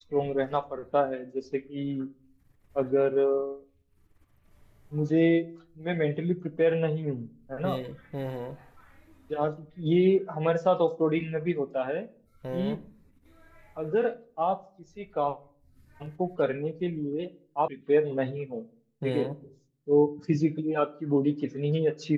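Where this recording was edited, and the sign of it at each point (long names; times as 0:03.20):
0:17.68: cut off before it has died away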